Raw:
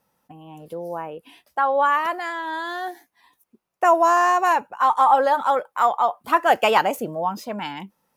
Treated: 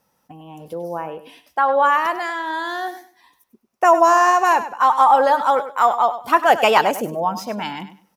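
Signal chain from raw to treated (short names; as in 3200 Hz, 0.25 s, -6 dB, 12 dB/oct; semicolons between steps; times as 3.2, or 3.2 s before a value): bell 5600 Hz +5.5 dB 0.31 oct; on a send: feedback echo 99 ms, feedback 22%, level -12.5 dB; on the sum: gain +3 dB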